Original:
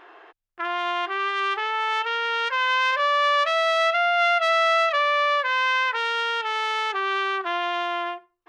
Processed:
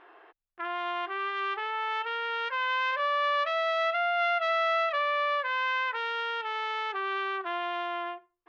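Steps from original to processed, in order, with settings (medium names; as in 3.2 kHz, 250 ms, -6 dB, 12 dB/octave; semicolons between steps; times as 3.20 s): distance through air 170 m; trim -5.5 dB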